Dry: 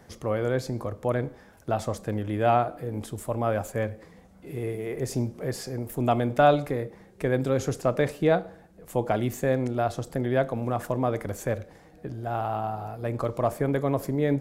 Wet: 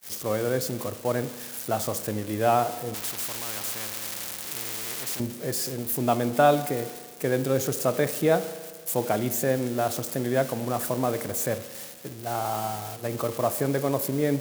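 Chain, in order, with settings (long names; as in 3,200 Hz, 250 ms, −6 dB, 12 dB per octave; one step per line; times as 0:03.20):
spike at every zero crossing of −24.5 dBFS
downward expander −31 dBFS
high-pass filter 120 Hz 12 dB per octave
spring reverb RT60 1.7 s, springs 37 ms, chirp 25 ms, DRR 13.5 dB
0:02.94–0:05.20: every bin compressed towards the loudest bin 4 to 1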